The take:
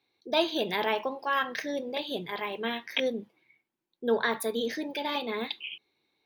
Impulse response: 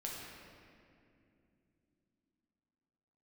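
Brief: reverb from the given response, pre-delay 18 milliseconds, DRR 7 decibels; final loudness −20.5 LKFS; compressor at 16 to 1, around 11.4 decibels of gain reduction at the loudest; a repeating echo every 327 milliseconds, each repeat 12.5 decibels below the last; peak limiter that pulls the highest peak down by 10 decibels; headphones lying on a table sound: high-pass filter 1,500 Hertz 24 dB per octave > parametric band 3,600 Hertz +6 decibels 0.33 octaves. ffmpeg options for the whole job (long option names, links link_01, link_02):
-filter_complex "[0:a]acompressor=threshold=-31dB:ratio=16,alimiter=level_in=4.5dB:limit=-24dB:level=0:latency=1,volume=-4.5dB,aecho=1:1:327|654|981:0.237|0.0569|0.0137,asplit=2[link_01][link_02];[1:a]atrim=start_sample=2205,adelay=18[link_03];[link_02][link_03]afir=irnorm=-1:irlink=0,volume=-7dB[link_04];[link_01][link_04]amix=inputs=2:normalize=0,highpass=frequency=1500:width=0.5412,highpass=frequency=1500:width=1.3066,equalizer=frequency=3600:width_type=o:width=0.33:gain=6,volume=19.5dB"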